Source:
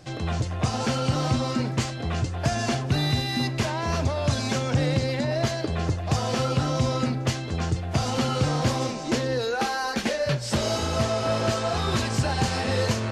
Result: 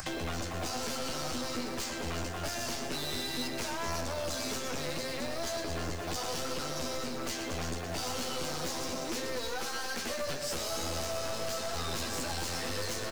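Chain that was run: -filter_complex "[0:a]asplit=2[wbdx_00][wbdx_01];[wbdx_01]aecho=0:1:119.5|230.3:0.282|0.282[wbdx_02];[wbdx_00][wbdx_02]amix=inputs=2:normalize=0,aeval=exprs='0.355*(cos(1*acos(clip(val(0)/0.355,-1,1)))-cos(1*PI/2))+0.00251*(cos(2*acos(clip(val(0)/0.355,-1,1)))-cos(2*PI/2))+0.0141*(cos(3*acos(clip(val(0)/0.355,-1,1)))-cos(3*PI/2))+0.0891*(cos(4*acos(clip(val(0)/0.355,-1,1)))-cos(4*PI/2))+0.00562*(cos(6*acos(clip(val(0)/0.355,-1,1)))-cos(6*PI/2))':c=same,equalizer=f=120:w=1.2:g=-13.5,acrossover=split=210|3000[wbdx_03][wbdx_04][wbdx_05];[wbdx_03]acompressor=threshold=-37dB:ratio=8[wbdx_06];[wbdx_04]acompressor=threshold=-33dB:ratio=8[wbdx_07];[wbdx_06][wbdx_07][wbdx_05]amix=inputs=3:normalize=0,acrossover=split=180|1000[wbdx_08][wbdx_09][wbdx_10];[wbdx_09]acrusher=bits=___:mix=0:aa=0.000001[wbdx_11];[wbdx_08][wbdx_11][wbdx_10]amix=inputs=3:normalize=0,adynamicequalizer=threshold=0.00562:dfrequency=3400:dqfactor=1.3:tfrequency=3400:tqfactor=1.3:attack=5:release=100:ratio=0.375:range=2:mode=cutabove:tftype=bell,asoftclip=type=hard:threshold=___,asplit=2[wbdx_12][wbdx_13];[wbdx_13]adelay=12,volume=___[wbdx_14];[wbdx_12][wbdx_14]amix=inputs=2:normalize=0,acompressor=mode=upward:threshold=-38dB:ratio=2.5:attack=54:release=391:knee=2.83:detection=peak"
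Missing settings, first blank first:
7, -33.5dB, -5dB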